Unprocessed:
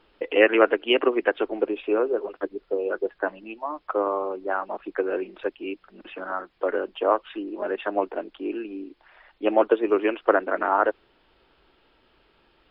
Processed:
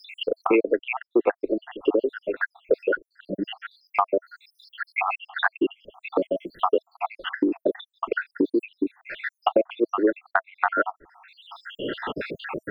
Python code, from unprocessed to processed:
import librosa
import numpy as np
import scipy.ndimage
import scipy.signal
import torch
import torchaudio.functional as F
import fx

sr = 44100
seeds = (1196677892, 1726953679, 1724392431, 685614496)

y = fx.spec_dropout(x, sr, seeds[0], share_pct=81)
y = fx.notch(y, sr, hz=650.0, q=12.0)
y = fx.band_squash(y, sr, depth_pct=100)
y = y * librosa.db_to_amplitude(8.0)